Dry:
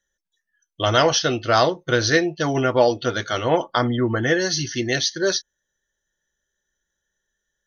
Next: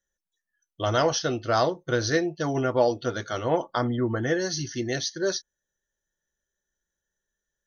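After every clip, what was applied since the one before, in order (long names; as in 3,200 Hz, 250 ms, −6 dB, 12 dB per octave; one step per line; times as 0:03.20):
parametric band 2,700 Hz −7 dB 1.5 octaves
level −4.5 dB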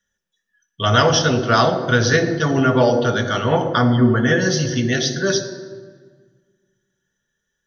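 convolution reverb RT60 1.6 s, pre-delay 3 ms, DRR 5 dB
level +2 dB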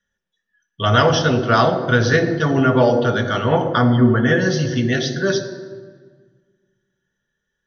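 high-frequency loss of the air 130 metres
level +1 dB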